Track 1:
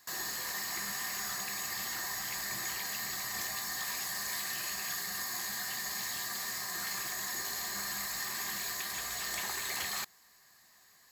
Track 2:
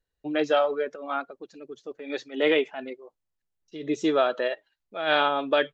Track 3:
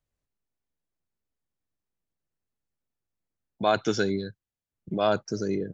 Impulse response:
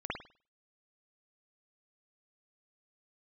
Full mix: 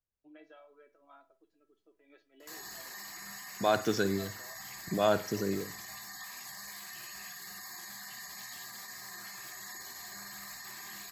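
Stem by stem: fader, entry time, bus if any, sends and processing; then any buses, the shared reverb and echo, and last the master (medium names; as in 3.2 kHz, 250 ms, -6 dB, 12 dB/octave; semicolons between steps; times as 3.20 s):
-5.5 dB, 2.40 s, send -8 dB, spectral gate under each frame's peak -20 dB strong; peak limiter -32.5 dBFS, peak gain reduction 8.5 dB
-13.5 dB, 0.00 s, send -18.5 dB, tone controls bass -5 dB, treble -12 dB; compression 4:1, threshold -27 dBFS, peak gain reduction 8.5 dB; feedback comb 330 Hz, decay 0.17 s, harmonics all, mix 90%
-13.0 dB, 0.00 s, send -16.5 dB, level rider gain up to 13 dB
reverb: on, pre-delay 50 ms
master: none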